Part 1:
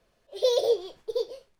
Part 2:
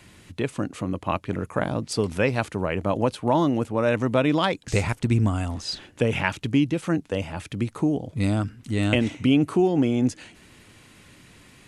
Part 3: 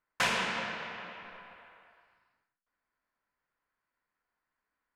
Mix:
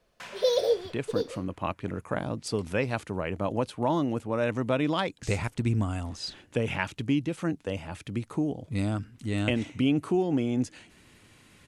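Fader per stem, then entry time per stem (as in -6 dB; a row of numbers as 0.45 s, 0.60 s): -1.0 dB, -5.5 dB, -15.0 dB; 0.00 s, 0.55 s, 0.00 s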